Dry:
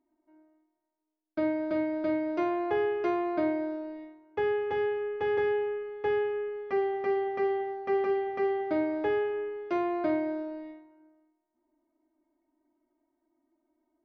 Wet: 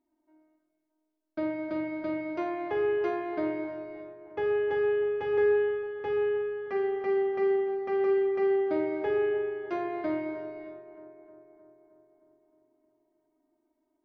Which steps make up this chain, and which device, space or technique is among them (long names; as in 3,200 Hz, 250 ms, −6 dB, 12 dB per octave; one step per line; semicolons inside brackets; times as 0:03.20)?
dub delay into a spring reverb (feedback echo with a low-pass in the loop 310 ms, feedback 66%, low-pass 2,300 Hz, level −13 dB; spring reverb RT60 1.4 s, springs 41 ms, chirp 55 ms, DRR 4.5 dB)
level −2.5 dB